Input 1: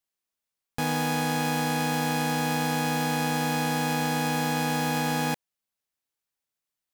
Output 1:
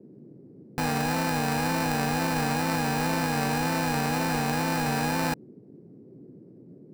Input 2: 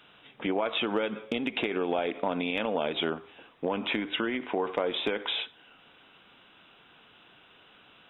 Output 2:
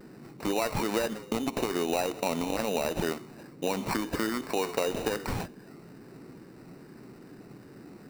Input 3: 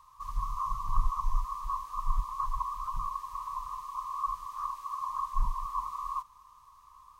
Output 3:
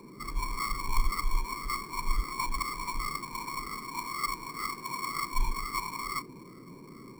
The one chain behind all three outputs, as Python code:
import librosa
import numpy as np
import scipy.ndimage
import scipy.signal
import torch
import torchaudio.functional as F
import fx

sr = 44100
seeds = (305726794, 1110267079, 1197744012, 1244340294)

y = fx.wow_flutter(x, sr, seeds[0], rate_hz=2.1, depth_cents=110.0)
y = fx.sample_hold(y, sr, seeds[1], rate_hz=3300.0, jitter_pct=0)
y = fx.dmg_noise_band(y, sr, seeds[2], low_hz=120.0, high_hz=400.0, level_db=-49.0)